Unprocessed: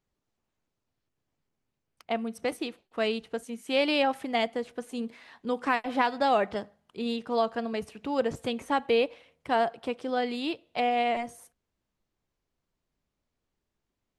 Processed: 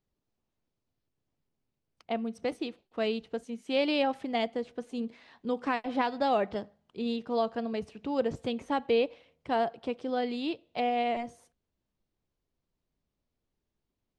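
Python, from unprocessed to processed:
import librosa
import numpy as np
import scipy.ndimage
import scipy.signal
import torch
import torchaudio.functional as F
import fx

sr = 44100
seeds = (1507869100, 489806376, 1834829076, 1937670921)

y = scipy.signal.sosfilt(scipy.signal.butter(2, 5200.0, 'lowpass', fs=sr, output='sos'), x)
y = fx.peak_eq(y, sr, hz=1600.0, db=-6.0, octaves=2.2)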